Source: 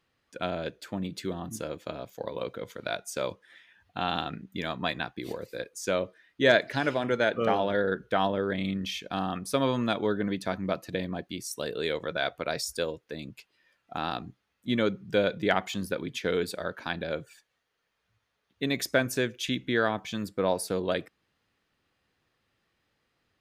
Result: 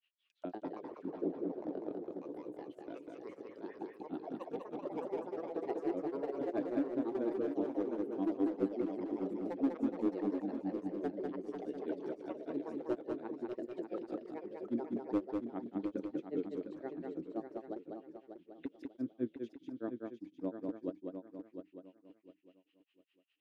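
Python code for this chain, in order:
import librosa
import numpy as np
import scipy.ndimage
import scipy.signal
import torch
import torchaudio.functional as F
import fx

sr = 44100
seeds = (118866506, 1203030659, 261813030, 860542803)

y = fx.auto_wah(x, sr, base_hz=300.0, top_hz=2900.0, q=7.8, full_db=-33.0, direction='down')
y = np.clip(10.0 ** (32.0 / 20.0) * y, -1.0, 1.0) / 10.0 ** (32.0 / 20.0)
y = fx.granulator(y, sr, seeds[0], grain_ms=120.0, per_s=4.9, spray_ms=35.0, spread_st=0)
y = fx.echo_feedback(y, sr, ms=705, feedback_pct=27, wet_db=-8)
y = fx.echo_pitch(y, sr, ms=168, semitones=3, count=3, db_per_echo=-3.0)
y = y + 10.0 ** (-3.5 / 20.0) * np.pad(y, (int(197 * sr / 1000.0), 0))[:len(y)]
y = y * 10.0 ** (7.0 / 20.0)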